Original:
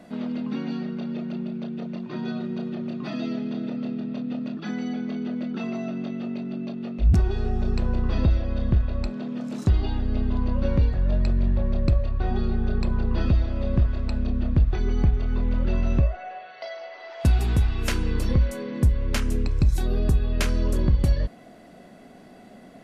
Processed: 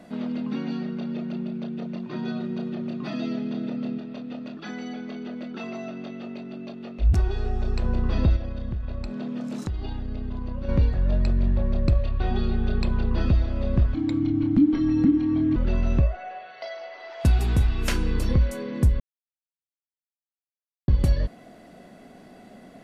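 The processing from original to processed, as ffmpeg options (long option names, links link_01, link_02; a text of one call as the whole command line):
ffmpeg -i in.wav -filter_complex "[0:a]asettb=1/sr,asplit=3[link_01][link_02][link_03];[link_01]atrim=end=3.984[link_04];[link_02]atrim=start=3.98:end=7.84,asetpts=PTS-STARTPTS,afade=type=in:duration=0.004:curve=qsin,afade=type=out:start_time=3.856:duration=0.004:curve=qsin,equalizer=frequency=180:width=1:gain=-8[link_05];[link_03]atrim=start=7.836[link_06];[link_04][link_05]acrossfade=duration=0.004:curve1=hsin:curve2=qsin[link_07];[link_07][link_06]acrossfade=duration=0.004:curve1=qsin:curve2=hsin,asettb=1/sr,asplit=3[link_08][link_09][link_10];[link_08]atrim=end=8.364[link_11];[link_09]atrim=start=8.36:end=10.69,asetpts=PTS-STARTPTS,afade=type=in:duration=0.004:curve=qsin,afade=type=out:start_time=2.326:duration=0.004:curve=qsin,acompressor=threshold=-26dB:ratio=6:attack=3.2:release=140:knee=1:detection=peak[link_12];[link_10]atrim=start=10.686[link_13];[link_11][link_12]acrossfade=duration=0.004:curve1=hsin:curve2=qsin[link_14];[link_14][link_13]acrossfade=duration=0.004:curve1=qsin:curve2=hsin,asettb=1/sr,asplit=3[link_15][link_16][link_17];[link_15]atrim=end=11.954[link_18];[link_16]atrim=start=11.95:end=13.1,asetpts=PTS-STARTPTS,afade=type=in:duration=0.004:curve=qsin,afade=type=out:start_time=1.146:duration=0.004:curve=qsin,equalizer=frequency=3200:width_type=o:width=1.1:gain=6[link_19];[link_17]atrim=start=13.096[link_20];[link_18][link_19]acrossfade=duration=0.004:curve1=hsin:curve2=qsin[link_21];[link_21][link_20]acrossfade=duration=0.004:curve1=qsin:curve2=hsin,asettb=1/sr,asplit=3[link_22][link_23][link_24];[link_22]atrim=end=13.944[link_25];[link_23]atrim=start=13.94:end=15.56,asetpts=PTS-STARTPTS,afade=type=in:duration=0.004:curve=qsin,afade=type=out:start_time=1.616:duration=0.004:curve=qsin,afreqshift=-350[link_26];[link_24]atrim=start=15.556[link_27];[link_25][link_26]acrossfade=duration=0.004:curve1=hsin:curve2=qsin[link_28];[link_28][link_27]acrossfade=duration=0.004:curve1=qsin:curve2=hsin,asettb=1/sr,asplit=3[link_29][link_30][link_31];[link_29]atrim=end=17.524[link_32];[link_30]atrim=start=17.52:end=18.18,asetpts=PTS-STARTPTS,afade=type=in:duration=0.004:curve=qsin,afade=type=out:start_time=0.656:duration=0.004:curve=qsin,asplit=2[link_33][link_34];[link_34]adelay=38,volume=-12.5dB[link_35];[link_33][link_35]amix=inputs=2:normalize=0,atrim=end_sample=29106[link_36];[link_31]atrim=start=18.176[link_37];[link_32][link_36]acrossfade=duration=0.004:curve1=hsin:curve2=qsin[link_38];[link_38][link_37]acrossfade=duration=0.004:curve1=qsin:curve2=hsin,asplit=3[link_39][link_40][link_41];[link_39]atrim=end=19,asetpts=PTS-STARTPTS,afade=type=out:start_time=18.996:duration=0.004:curve=hsin[link_42];[link_40]atrim=start=19:end=20.88,asetpts=PTS-STARTPTS,volume=0[link_43];[link_41]atrim=start=20.88,asetpts=PTS-STARTPTS,afade=type=in:duration=0.004:curve=hsin[link_44];[link_42][link_43][link_44]concat=n=3:v=0:a=1" out.wav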